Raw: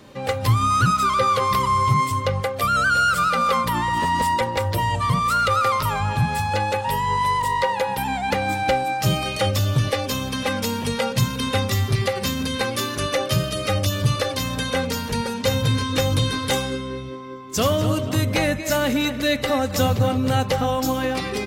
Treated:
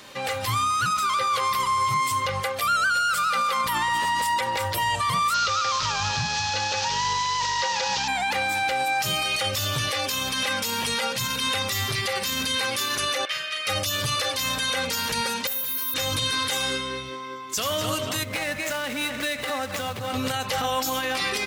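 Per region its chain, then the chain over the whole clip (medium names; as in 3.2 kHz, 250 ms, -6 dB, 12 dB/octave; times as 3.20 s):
5.34–8.08 s: one-bit delta coder 32 kbps, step -25.5 dBFS + tone controls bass +5 dB, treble +9 dB + band-stop 2.1 kHz, Q 11
13.25–13.67 s: band-pass filter 2 kHz, Q 2.2 + doubling 39 ms -5 dB
15.47–15.94 s: high-pass 170 Hz 24 dB/octave + careless resampling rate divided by 3×, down none, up zero stuff
18.23–20.14 s: median filter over 9 samples + high-pass 54 Hz + compression 5:1, threshold -24 dBFS
whole clip: tilt shelf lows -9 dB, about 670 Hz; peak limiter -16.5 dBFS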